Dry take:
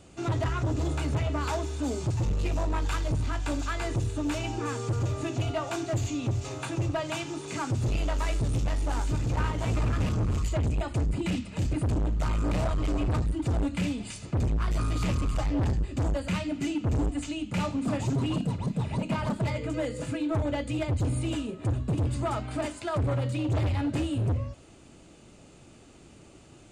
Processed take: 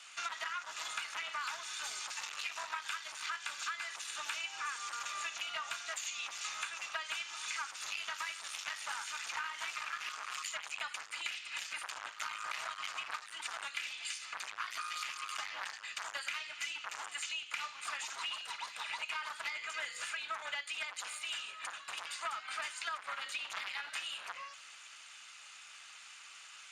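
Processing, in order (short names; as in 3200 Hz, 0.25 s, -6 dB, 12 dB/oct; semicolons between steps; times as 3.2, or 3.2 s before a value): HPF 1300 Hz 24 dB/oct; high shelf 2300 Hz -2.5 dB; compressor 12:1, threshold -47 dBFS, peak gain reduction 15.5 dB; gain +11 dB; Speex 36 kbps 32000 Hz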